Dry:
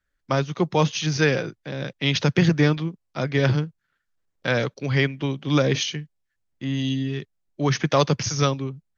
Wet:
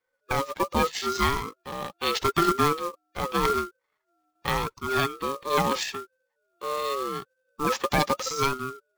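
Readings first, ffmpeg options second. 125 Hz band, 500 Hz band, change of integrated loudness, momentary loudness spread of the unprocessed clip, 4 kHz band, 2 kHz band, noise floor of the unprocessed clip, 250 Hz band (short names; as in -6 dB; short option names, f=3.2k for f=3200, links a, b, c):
-13.5 dB, -4.0 dB, -3.5 dB, 11 LU, -3.5 dB, -4.0 dB, -76 dBFS, -8.0 dB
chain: -af "afftfilt=real='real(if(between(b,1,1008),(2*floor((b-1)/48)+1)*48-b,b),0)':imag='imag(if(between(b,1,1008),(2*floor((b-1)/48)+1)*48-b,b),0)*if(between(b,1,1008),-1,1)':win_size=2048:overlap=0.75,acrusher=bits=3:mode=log:mix=0:aa=0.000001,aeval=exprs='val(0)*sin(2*PI*410*n/s+410*0.25/0.81*sin(2*PI*0.81*n/s))':c=same,volume=-1.5dB"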